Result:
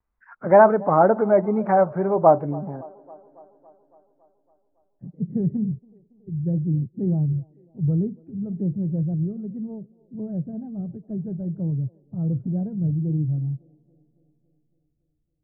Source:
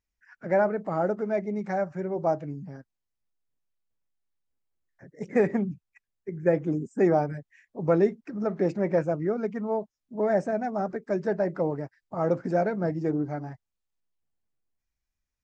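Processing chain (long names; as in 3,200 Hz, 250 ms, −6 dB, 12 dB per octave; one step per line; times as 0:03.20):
low-pass filter sweep 1,100 Hz → 130 Hz, 0:02.32–0:05.54
pitch vibrato 2 Hz 87 cents
delay with a band-pass on its return 279 ms, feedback 62%, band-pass 570 Hz, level −21.5 dB
level +7.5 dB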